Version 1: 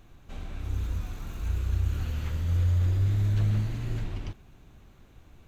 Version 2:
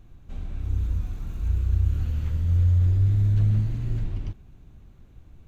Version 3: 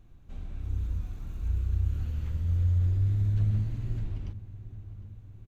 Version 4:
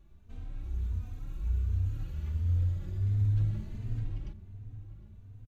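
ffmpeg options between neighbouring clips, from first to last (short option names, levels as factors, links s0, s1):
-af "lowshelf=f=310:g=11.5,volume=0.501"
-filter_complex "[0:a]asplit=2[s0][s1];[s1]adelay=755,lowpass=f=1700:p=1,volume=0.188,asplit=2[s2][s3];[s3]adelay=755,lowpass=f=1700:p=1,volume=0.54,asplit=2[s4][s5];[s5]adelay=755,lowpass=f=1700:p=1,volume=0.54,asplit=2[s6][s7];[s7]adelay=755,lowpass=f=1700:p=1,volume=0.54,asplit=2[s8][s9];[s9]adelay=755,lowpass=f=1700:p=1,volume=0.54[s10];[s0][s2][s4][s6][s8][s10]amix=inputs=6:normalize=0,volume=0.531"
-filter_complex "[0:a]asplit=2[s0][s1];[s1]adelay=3.1,afreqshift=1.4[s2];[s0][s2]amix=inputs=2:normalize=1"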